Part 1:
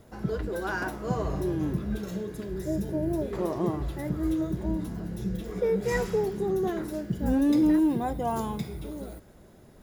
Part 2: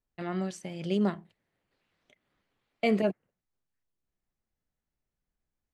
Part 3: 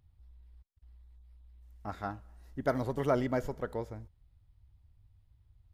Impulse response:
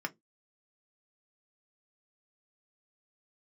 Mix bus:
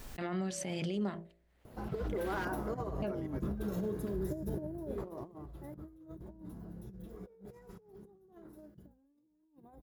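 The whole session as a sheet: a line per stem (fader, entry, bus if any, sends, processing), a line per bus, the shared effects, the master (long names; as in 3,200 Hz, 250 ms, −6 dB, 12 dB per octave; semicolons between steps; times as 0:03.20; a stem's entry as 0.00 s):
0:04.74 −4 dB → 0:05.40 −16.5 dB → 0:07.47 −16.5 dB → 0:08.18 −23.5 dB, 1.65 s, no send, flat-topped bell 3,800 Hz −8.5 dB 2.7 octaves; compressor whose output falls as the input rises −32 dBFS, ratio −0.5
−1.0 dB, 0.00 s, muted 0:02.45–0:03.02, no send, hum removal 56.86 Hz, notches 12; background raised ahead of every attack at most 38 dB per second
−17.0 dB, 0.00 s, no send, no processing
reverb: not used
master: brickwall limiter −27.5 dBFS, peak gain reduction 10.5 dB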